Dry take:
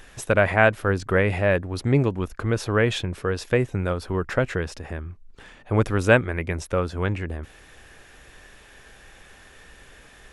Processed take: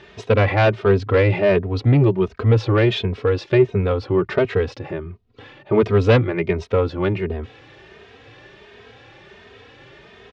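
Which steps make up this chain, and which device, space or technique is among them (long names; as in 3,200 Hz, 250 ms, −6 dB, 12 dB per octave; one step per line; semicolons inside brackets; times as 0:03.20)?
barber-pole flanger into a guitar amplifier (barber-pole flanger 2.9 ms +1.4 Hz; soft clipping −18 dBFS, distortion −12 dB; loudspeaker in its box 97–4,400 Hz, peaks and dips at 110 Hz +8 dB, 400 Hz +8 dB, 1,600 Hz −6 dB)
level +8 dB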